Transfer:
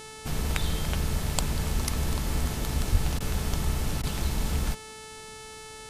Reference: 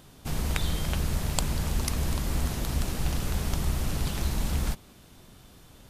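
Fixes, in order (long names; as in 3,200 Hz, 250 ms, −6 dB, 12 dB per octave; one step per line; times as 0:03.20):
hum removal 437.1 Hz, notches 24
0:02.91–0:03.03: high-pass filter 140 Hz 24 dB per octave
repair the gap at 0:03.19/0:04.02, 12 ms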